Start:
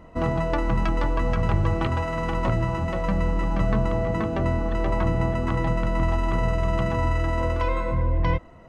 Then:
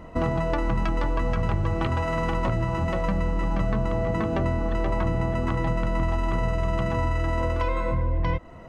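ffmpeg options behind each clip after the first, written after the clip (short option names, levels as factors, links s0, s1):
-af "acompressor=threshold=0.0447:ratio=3,volume=1.68"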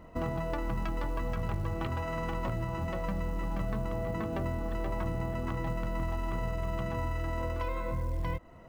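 -af "acrusher=bits=8:mode=log:mix=0:aa=0.000001,volume=0.376"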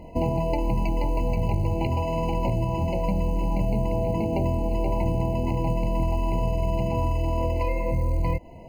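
-af "afftfilt=real='re*eq(mod(floor(b*sr/1024/1000),2),0)':imag='im*eq(mod(floor(b*sr/1024/1000),2),0)':win_size=1024:overlap=0.75,volume=2.82"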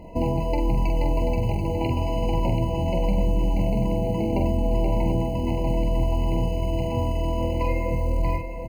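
-af "aecho=1:1:45|734:0.562|0.422"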